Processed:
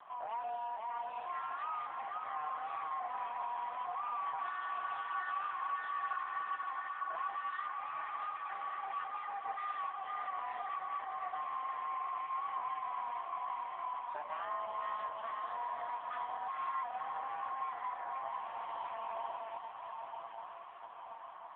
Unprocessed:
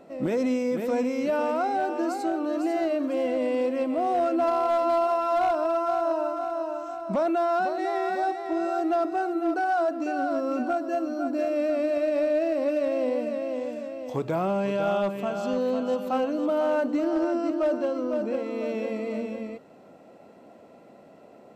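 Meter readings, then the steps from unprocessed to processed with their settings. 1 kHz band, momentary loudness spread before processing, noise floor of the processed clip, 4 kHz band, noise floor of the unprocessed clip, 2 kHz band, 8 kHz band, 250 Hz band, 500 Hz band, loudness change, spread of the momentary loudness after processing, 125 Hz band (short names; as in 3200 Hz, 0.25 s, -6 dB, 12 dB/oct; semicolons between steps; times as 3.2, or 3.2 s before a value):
-7.0 dB, 6 LU, -49 dBFS, -11.0 dB, -51 dBFS, -8.0 dB, n/a, under -40 dB, -26.5 dB, -13.5 dB, 4 LU, under -30 dB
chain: notches 60/120/180/240 Hz; compressor 2:1, threshold -40 dBFS, peak gain reduction 10.5 dB; soft clip -34 dBFS, distortion -14 dB; frequency shift +460 Hz; diffused feedback echo 0.913 s, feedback 56%, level -5.5 dB; AMR-NB 5.15 kbps 8000 Hz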